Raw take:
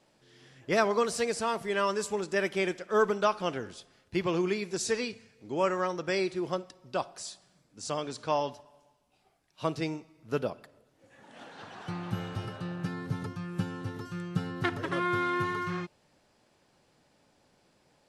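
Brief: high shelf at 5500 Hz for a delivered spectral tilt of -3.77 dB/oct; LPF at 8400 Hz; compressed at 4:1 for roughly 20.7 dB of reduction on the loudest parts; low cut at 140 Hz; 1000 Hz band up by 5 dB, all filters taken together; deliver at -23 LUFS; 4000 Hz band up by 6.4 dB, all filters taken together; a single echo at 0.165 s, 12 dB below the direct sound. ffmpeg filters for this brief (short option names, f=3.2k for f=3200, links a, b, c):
-af "highpass=140,lowpass=8.4k,equalizer=f=1k:t=o:g=5.5,equalizer=f=4k:t=o:g=6,highshelf=f=5.5k:g=5.5,acompressor=threshold=-44dB:ratio=4,aecho=1:1:165:0.251,volume=22dB"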